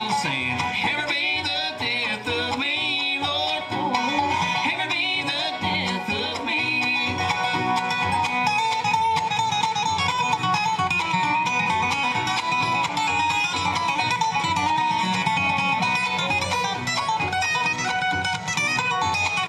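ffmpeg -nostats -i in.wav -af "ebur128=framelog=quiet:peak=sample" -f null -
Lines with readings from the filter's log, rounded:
Integrated loudness:
  I:         -22.0 LUFS
  Threshold: -32.0 LUFS
Loudness range:
  LRA:         1.2 LU
  Threshold: -42.0 LUFS
  LRA low:   -22.7 LUFS
  LRA high:  -21.4 LUFS
Sample peak:
  Peak:       -9.8 dBFS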